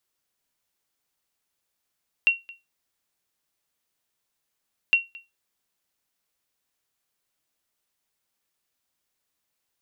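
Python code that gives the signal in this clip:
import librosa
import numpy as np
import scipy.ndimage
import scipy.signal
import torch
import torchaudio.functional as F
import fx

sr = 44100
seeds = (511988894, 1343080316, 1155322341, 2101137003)

y = fx.sonar_ping(sr, hz=2740.0, decay_s=0.21, every_s=2.66, pings=2, echo_s=0.22, echo_db=-23.5, level_db=-10.5)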